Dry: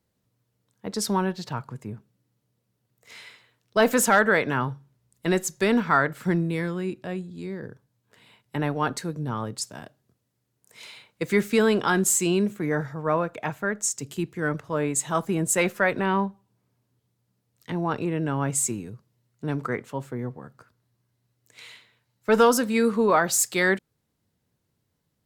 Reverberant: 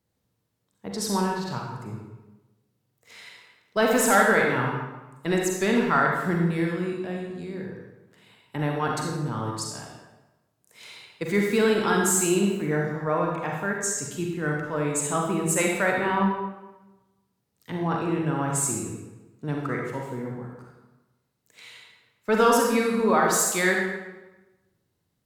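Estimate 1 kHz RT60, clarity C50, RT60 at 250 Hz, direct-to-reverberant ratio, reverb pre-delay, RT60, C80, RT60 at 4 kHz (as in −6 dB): 1.1 s, 1.5 dB, 1.1 s, −0.5 dB, 36 ms, 1.1 s, 4.0 dB, 0.80 s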